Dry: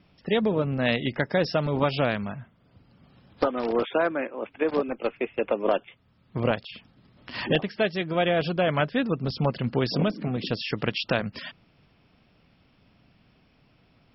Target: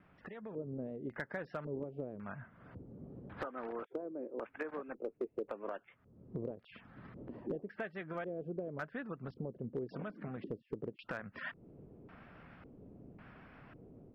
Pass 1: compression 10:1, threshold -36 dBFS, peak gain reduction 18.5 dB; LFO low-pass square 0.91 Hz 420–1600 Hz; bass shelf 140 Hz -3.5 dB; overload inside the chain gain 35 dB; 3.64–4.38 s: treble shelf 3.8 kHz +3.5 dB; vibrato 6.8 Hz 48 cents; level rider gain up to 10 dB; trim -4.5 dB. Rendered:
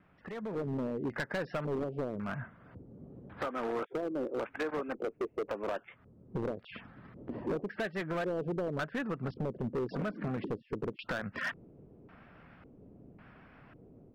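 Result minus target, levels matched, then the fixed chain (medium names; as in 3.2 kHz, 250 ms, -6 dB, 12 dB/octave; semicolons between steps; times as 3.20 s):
compression: peak gain reduction -9 dB
compression 10:1, threshold -46 dBFS, peak gain reduction 27.5 dB; LFO low-pass square 0.91 Hz 420–1600 Hz; bass shelf 140 Hz -3.5 dB; overload inside the chain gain 35 dB; 3.64–4.38 s: treble shelf 3.8 kHz +3.5 dB; vibrato 6.8 Hz 48 cents; level rider gain up to 10 dB; trim -4.5 dB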